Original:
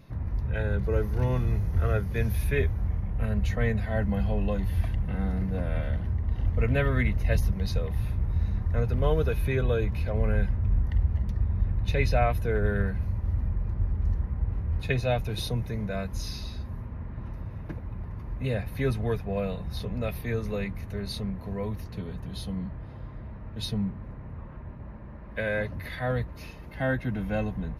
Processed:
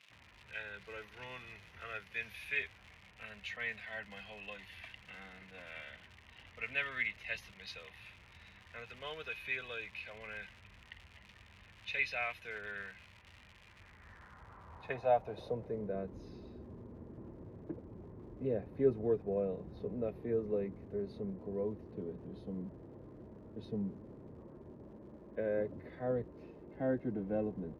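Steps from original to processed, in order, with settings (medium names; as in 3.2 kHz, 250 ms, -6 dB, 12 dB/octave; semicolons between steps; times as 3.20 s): crackle 180 per s -38 dBFS; band-pass sweep 2.6 kHz -> 370 Hz, 13.66–15.96 s; trim +2 dB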